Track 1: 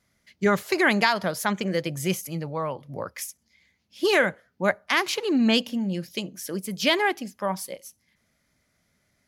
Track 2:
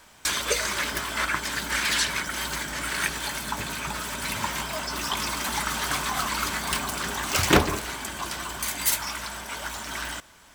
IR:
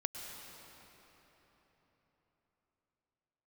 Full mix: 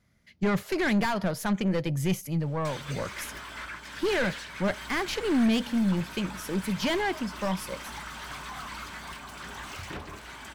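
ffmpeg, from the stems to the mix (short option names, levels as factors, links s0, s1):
-filter_complex "[0:a]aeval=exprs='(tanh(14.1*val(0)+0.15)-tanh(0.15))/14.1':c=same,volume=0.944[s0];[1:a]alimiter=limit=0.15:level=0:latency=1:release=463,lowshelf=f=130:g=7.5,asplit=2[s1][s2];[s2]highpass=f=720:p=1,volume=5.62,asoftclip=type=tanh:threshold=0.168[s3];[s1][s3]amix=inputs=2:normalize=0,lowpass=f=6500:p=1,volume=0.501,adelay=2400,volume=0.178[s4];[s0][s4]amix=inputs=2:normalize=0,bass=f=250:g=7,treble=f=4000:g=-5"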